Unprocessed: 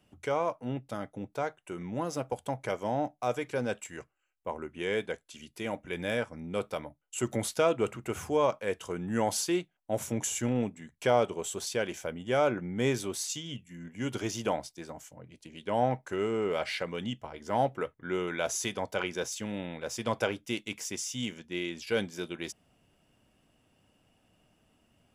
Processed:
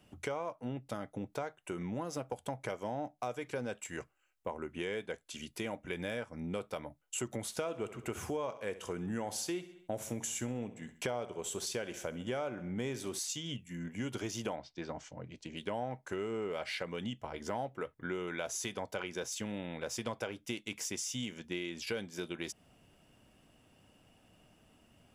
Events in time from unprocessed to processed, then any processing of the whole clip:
7.43–13.19 feedback echo 66 ms, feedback 44%, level -16 dB
14.55–15.55 LPF 4100 Hz -> 8000 Hz 24 dB/oct
whole clip: compressor 5:1, threshold -39 dBFS; gain +3.5 dB

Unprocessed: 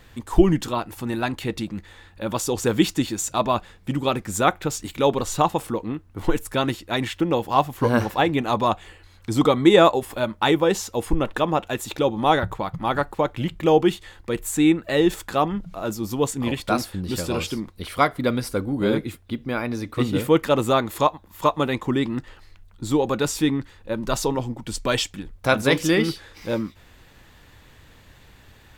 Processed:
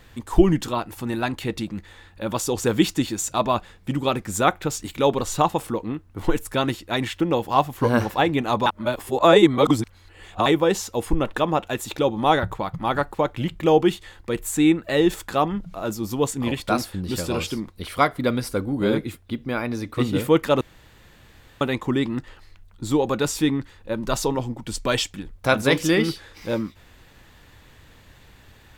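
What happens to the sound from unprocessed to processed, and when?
8.66–10.46 reverse
20.61–21.61 room tone

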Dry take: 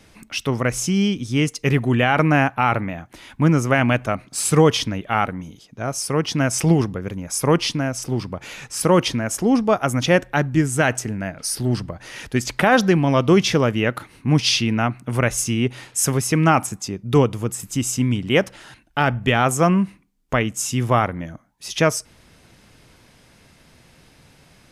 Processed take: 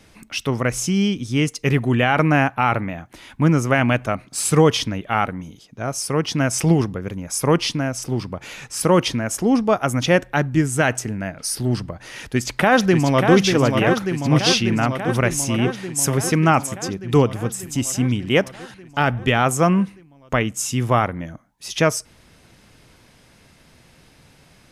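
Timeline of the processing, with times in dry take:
12.16–13.34 echo throw 0.59 s, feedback 75%, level -5 dB

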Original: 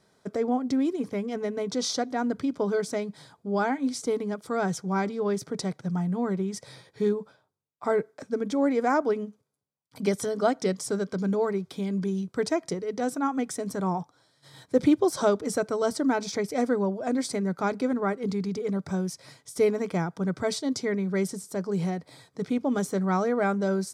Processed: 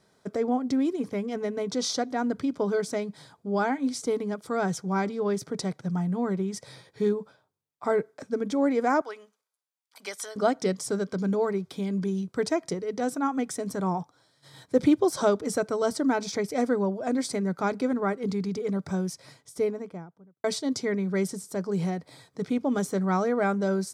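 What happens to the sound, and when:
9.01–10.36 HPF 1000 Hz
19.08–20.44 studio fade out

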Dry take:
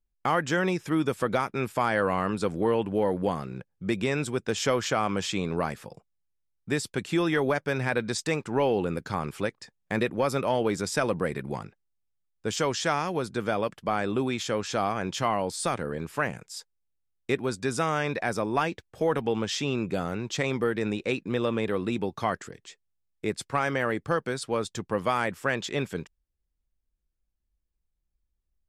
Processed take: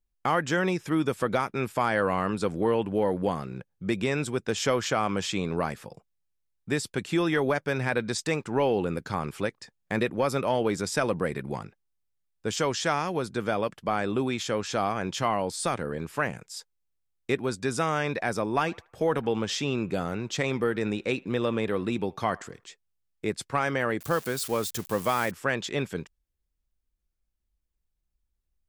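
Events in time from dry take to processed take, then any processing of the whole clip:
18.49–22.64 narrowing echo 77 ms, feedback 40%, band-pass 1200 Hz, level -21.5 dB
24–25.31 switching spikes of -28.5 dBFS

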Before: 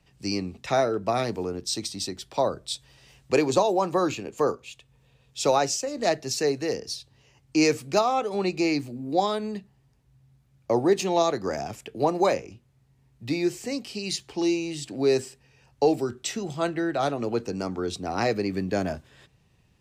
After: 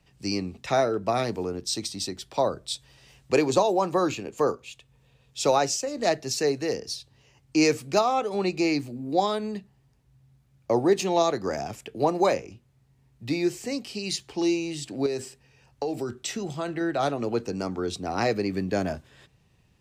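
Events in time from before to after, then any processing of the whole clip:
15.06–16.81 compressor, threshold -25 dBFS

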